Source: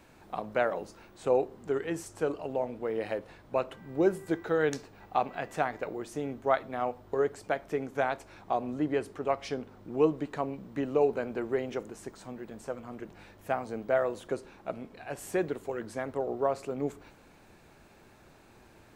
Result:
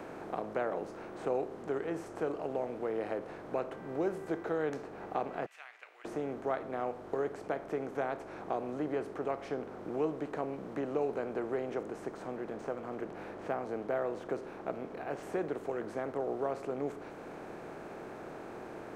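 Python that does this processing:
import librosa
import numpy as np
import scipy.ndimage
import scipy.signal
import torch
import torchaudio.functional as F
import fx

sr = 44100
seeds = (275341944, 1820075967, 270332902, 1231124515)

y = fx.ladder_highpass(x, sr, hz=2300.0, resonance_pct=60, at=(5.46, 6.05))
y = fx.resample_linear(y, sr, factor=3, at=(12.36, 15.23))
y = fx.bin_compress(y, sr, power=0.6)
y = fx.high_shelf(y, sr, hz=2800.0, db=-8.5)
y = fx.band_squash(y, sr, depth_pct=40)
y = y * librosa.db_to_amplitude(-8.5)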